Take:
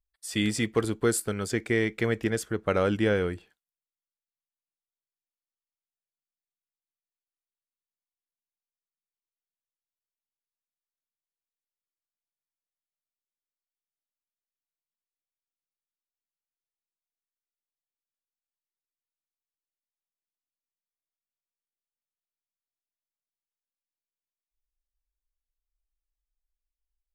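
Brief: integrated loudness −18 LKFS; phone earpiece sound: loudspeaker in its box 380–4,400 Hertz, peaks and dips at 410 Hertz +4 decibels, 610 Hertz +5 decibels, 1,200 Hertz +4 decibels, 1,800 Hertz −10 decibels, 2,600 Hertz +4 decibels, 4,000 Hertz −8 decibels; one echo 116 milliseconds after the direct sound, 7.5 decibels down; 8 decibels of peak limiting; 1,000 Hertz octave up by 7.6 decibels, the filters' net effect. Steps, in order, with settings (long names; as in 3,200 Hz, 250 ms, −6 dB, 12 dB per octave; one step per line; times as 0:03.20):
parametric band 1,000 Hz +8.5 dB
brickwall limiter −15 dBFS
loudspeaker in its box 380–4,400 Hz, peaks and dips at 410 Hz +4 dB, 610 Hz +5 dB, 1,200 Hz +4 dB, 1,800 Hz −10 dB, 2,600 Hz +4 dB, 4,000 Hz −8 dB
single-tap delay 116 ms −7.5 dB
level +11 dB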